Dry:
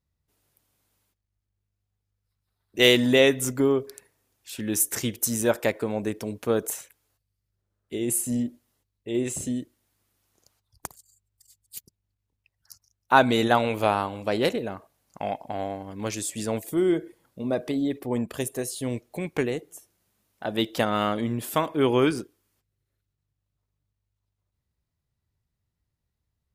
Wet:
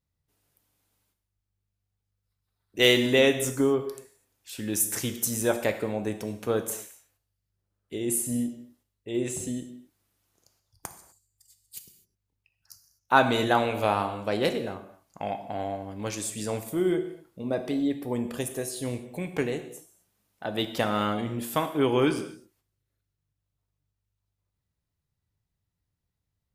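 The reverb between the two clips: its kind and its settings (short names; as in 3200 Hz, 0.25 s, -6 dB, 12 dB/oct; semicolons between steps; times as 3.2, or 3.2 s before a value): non-linear reverb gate 0.28 s falling, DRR 7 dB; gain -2.5 dB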